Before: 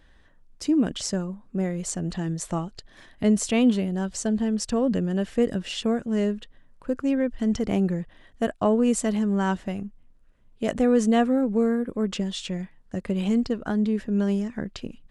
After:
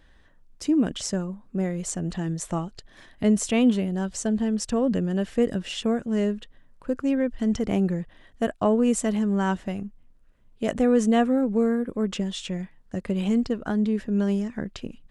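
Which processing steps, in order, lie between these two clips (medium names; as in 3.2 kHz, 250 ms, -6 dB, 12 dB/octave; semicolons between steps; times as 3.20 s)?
dynamic bell 4.5 kHz, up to -4 dB, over -52 dBFS, Q 3.7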